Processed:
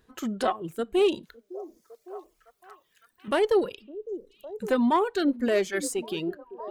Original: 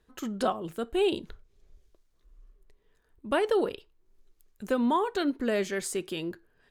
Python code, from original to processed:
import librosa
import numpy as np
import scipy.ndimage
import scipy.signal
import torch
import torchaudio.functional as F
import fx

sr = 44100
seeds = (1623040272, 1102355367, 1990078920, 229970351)

y = fx.diode_clip(x, sr, knee_db=-22.0)
y = fx.echo_stepped(y, sr, ms=558, hz=310.0, octaves=0.7, feedback_pct=70, wet_db=-11.0)
y = fx.hpss(y, sr, part='harmonic', gain_db=5)
y = fx.dmg_noise_colour(y, sr, seeds[0], colour='brown', level_db=-64.0)
y = fx.low_shelf(y, sr, hz=81.0, db=-12.0)
y = fx.dereverb_blind(y, sr, rt60_s=1.0)
y = fx.tilt_eq(y, sr, slope=3.5, at=(1.23, 3.28))
y = F.gain(torch.from_numpy(y), 2.0).numpy()